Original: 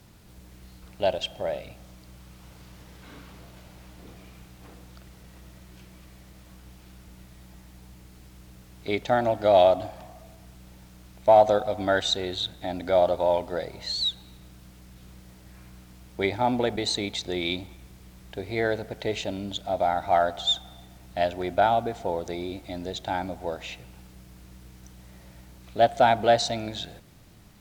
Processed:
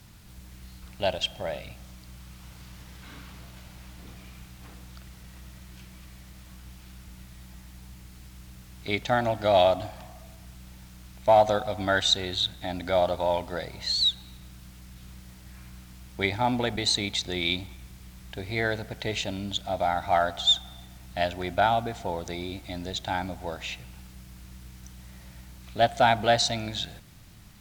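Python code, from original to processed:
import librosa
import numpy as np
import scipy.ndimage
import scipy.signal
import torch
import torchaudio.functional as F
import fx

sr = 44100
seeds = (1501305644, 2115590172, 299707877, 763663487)

y = fx.peak_eq(x, sr, hz=450.0, db=-8.5, octaves=1.8)
y = y * 10.0 ** (3.5 / 20.0)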